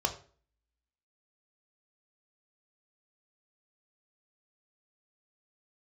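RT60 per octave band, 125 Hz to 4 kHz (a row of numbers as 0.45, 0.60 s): 0.45, 0.50, 0.45, 0.40, 0.40, 0.35 s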